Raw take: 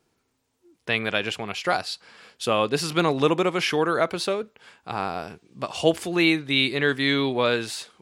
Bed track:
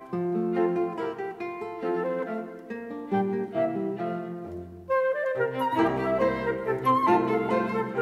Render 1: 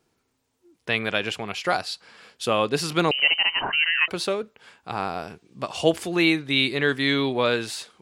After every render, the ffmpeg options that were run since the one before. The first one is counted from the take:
-filter_complex "[0:a]asettb=1/sr,asplit=3[a][b][c];[a]atrim=end=3.114[d];[b]atrim=start=3.11:end=4.08,asetpts=PTS-STARTPTS,afade=t=in:d=0.004:c=qsin,afade=t=out:st=0.966:d=0.004:c=qsin,lowpass=f=2.7k:t=q:w=0.5098,lowpass=f=2.7k:t=q:w=0.6013,lowpass=f=2.7k:t=q:w=0.9,lowpass=f=2.7k:t=q:w=2.563,afreqshift=-3200[e];[c]atrim=start=4.076[f];[d][e]acrossfade=d=0.004:c1=hsin:c2=qsin[g];[g][f]acrossfade=d=0.004:c1=qsin:c2=hsin"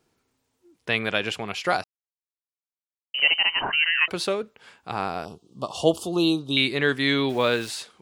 -filter_complex "[0:a]asettb=1/sr,asplit=3[a][b][c];[a]atrim=end=5.254[d];[b]atrim=start=5.25:end=6.57,asetpts=PTS-STARTPTS,afade=t=in:d=0.004:c=qsin,afade=t=out:st=1.316:d=0.004:c=qsin,asuperstop=centerf=1900:order=8:qfactor=1.1[e];[c]atrim=start=6.566[f];[d][e]acrossfade=d=0.004:c1=hsin:c2=qsin[g];[g][f]acrossfade=d=0.004:c1=qsin:c2=hsin,asplit=3[h][i][j];[h]afade=t=out:st=7.28:d=0.02[k];[i]aeval=exprs='val(0)*gte(abs(val(0)),0.0126)':c=same,afade=t=in:st=7.28:d=0.02,afade=t=out:st=7.68:d=0.02[l];[j]afade=t=in:st=7.68:d=0.02[m];[k][l][m]amix=inputs=3:normalize=0,asplit=3[n][o][p];[n]atrim=end=1.84,asetpts=PTS-STARTPTS,afade=t=out:st=1.836:d=0.004:c=hsin[q];[o]atrim=start=1.84:end=3.14,asetpts=PTS-STARTPTS,volume=0[r];[p]atrim=start=3.14,asetpts=PTS-STARTPTS,afade=t=in:d=0.004:c=hsin[s];[q][r][s]concat=n=3:v=0:a=1"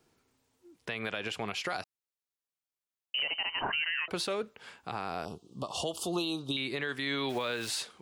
-filter_complex "[0:a]acrossover=split=610|1300[a][b][c];[a]acompressor=threshold=-31dB:ratio=4[d];[b]acompressor=threshold=-30dB:ratio=4[e];[c]acompressor=threshold=-25dB:ratio=4[f];[d][e][f]amix=inputs=3:normalize=0,alimiter=limit=-23dB:level=0:latency=1:release=158"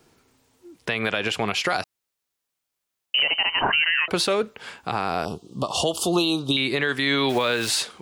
-af "volume=11dB"

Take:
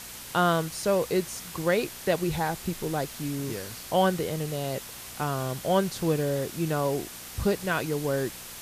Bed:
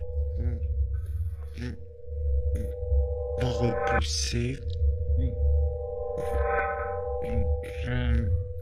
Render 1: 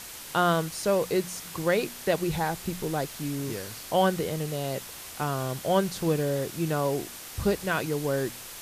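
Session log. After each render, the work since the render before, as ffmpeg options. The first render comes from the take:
-af "bandreject=f=60:t=h:w=4,bandreject=f=120:t=h:w=4,bandreject=f=180:t=h:w=4,bandreject=f=240:t=h:w=4"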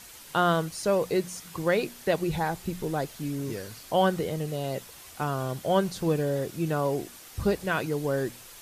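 -af "afftdn=nr=7:nf=-42"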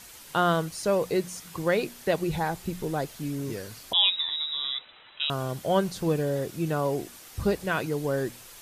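-filter_complex "[0:a]asettb=1/sr,asplit=3[a][b][c];[a]atrim=end=3.934[d];[b]atrim=start=3.93:end=5.3,asetpts=PTS-STARTPTS,afade=t=in:d=0.004:c=qsin,afade=t=out:st=1.366:d=0.004:c=qsin,lowpass=f=3.4k:t=q:w=0.5098,lowpass=f=3.4k:t=q:w=0.6013,lowpass=f=3.4k:t=q:w=0.9,lowpass=f=3.4k:t=q:w=2.563,afreqshift=-4000[e];[c]atrim=start=5.296[f];[d][e]acrossfade=d=0.004:c1=hsin:c2=qsin[g];[g][f]acrossfade=d=0.004:c1=qsin:c2=hsin"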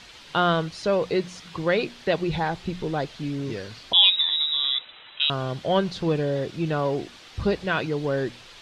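-filter_complex "[0:a]asplit=2[a][b];[b]asoftclip=type=tanh:threshold=-23.5dB,volume=-8.5dB[c];[a][c]amix=inputs=2:normalize=0,lowpass=f=3.8k:t=q:w=1.6"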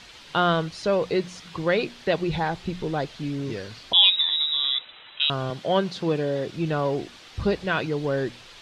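-filter_complex "[0:a]asettb=1/sr,asplit=3[a][b][c];[a]atrim=end=5.504[d];[b]atrim=start=5.5:end=6.47,asetpts=PTS-STARTPTS,afade=t=in:d=0.004:c=qsin,afade=t=out:st=0.966:d=0.004:c=qsin,highpass=150[e];[c]atrim=start=6.466[f];[d][e]acrossfade=d=0.004:c1=hsin:c2=qsin[g];[g][f]acrossfade=d=0.004:c1=qsin:c2=hsin"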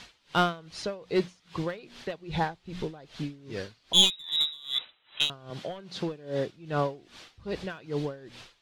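-af "aeval=exprs='clip(val(0),-1,0.133)':c=same,aeval=exprs='val(0)*pow(10,-23*(0.5-0.5*cos(2*PI*2.5*n/s))/20)':c=same"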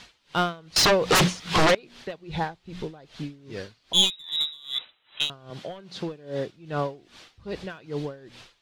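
-filter_complex "[0:a]asettb=1/sr,asplit=3[a][b][c];[a]atrim=end=0.764[d];[b]atrim=start=0.76:end=1.75,asetpts=PTS-STARTPTS,afade=t=in:d=0.004:c=qsin,afade=t=out:st=0.986:d=0.004:c=qsin,aeval=exprs='0.188*sin(PI/2*8.91*val(0)/0.188)':c=same[e];[c]atrim=start=1.746[f];[d][e]acrossfade=d=0.004:c1=hsin:c2=qsin[g];[g][f]acrossfade=d=0.004:c1=qsin:c2=hsin"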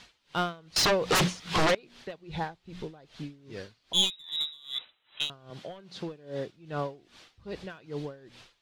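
-af "volume=-5dB"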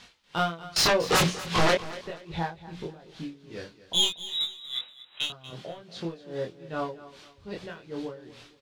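-filter_complex "[0:a]asplit=2[a][b];[b]adelay=24,volume=-2dB[c];[a][c]amix=inputs=2:normalize=0,aecho=1:1:238|476|714:0.15|0.0494|0.0163"

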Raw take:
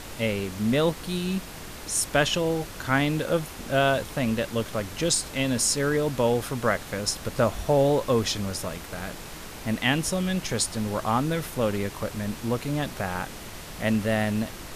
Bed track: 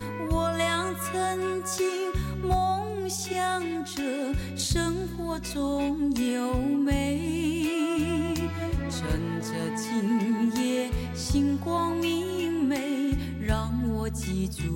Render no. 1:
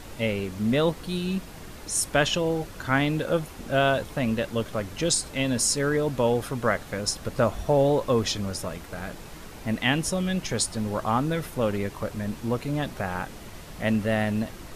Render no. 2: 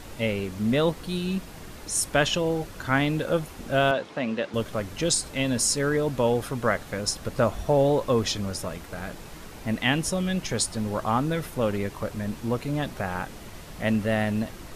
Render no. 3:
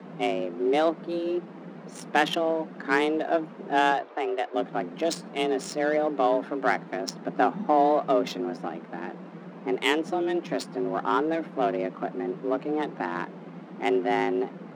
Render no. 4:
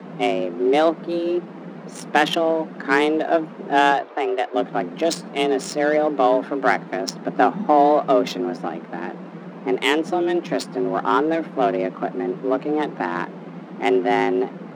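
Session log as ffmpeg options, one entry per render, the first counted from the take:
-af "afftdn=nr=6:nf=-40"
-filter_complex "[0:a]asettb=1/sr,asplit=3[a][b][c];[a]atrim=end=3.914[d];[b]atrim=start=3.91:end=4.54,asetpts=PTS-STARTPTS,afade=t=in:d=0.004:c=qsin,afade=t=out:st=0.626:d=0.004:c=qsin,highpass=230,lowpass=4.7k[e];[c]atrim=start=4.536[f];[d][e]acrossfade=d=0.004:c1=hsin:c2=qsin[g];[g][f]acrossfade=d=0.004:c1=qsin:c2=hsin"
-af "adynamicsmooth=sensitivity=1.5:basefreq=1.5k,afreqshift=160"
-af "volume=6dB,alimiter=limit=-3dB:level=0:latency=1"

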